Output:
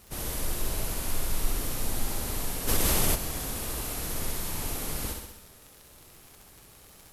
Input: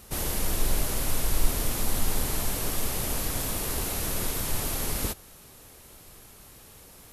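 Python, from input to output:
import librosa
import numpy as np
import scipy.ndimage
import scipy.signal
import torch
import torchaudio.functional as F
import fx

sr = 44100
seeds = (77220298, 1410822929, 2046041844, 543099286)

p1 = fx.dmg_crackle(x, sr, seeds[0], per_s=93.0, level_db=-34.0)
p2 = p1 + fx.room_flutter(p1, sr, wall_m=11.2, rt60_s=0.91, dry=0)
p3 = fx.env_flatten(p2, sr, amount_pct=70, at=(2.67, 3.14), fade=0.02)
y = F.gain(torch.from_numpy(p3), -5.5).numpy()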